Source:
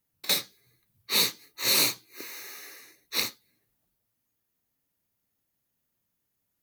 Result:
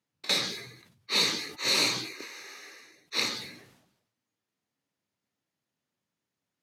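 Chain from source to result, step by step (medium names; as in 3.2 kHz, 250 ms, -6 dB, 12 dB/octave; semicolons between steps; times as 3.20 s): band-pass 130–5800 Hz; decay stretcher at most 65 dB/s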